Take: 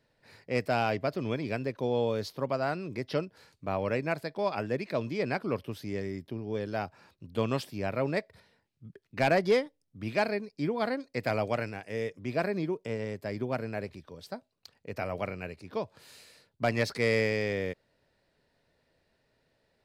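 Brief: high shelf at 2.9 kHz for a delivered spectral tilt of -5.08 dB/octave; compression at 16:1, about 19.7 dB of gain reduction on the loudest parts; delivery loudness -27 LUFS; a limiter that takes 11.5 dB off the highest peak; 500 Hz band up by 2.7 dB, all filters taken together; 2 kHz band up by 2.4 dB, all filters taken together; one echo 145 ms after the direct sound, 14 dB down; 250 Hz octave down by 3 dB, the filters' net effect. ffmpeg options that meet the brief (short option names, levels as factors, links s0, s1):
-af "equalizer=f=250:t=o:g=-5.5,equalizer=f=500:t=o:g=4.5,equalizer=f=2000:t=o:g=5,highshelf=f=2900:g=-6,acompressor=threshold=0.0126:ratio=16,alimiter=level_in=3.16:limit=0.0631:level=0:latency=1,volume=0.316,aecho=1:1:145:0.2,volume=8.91"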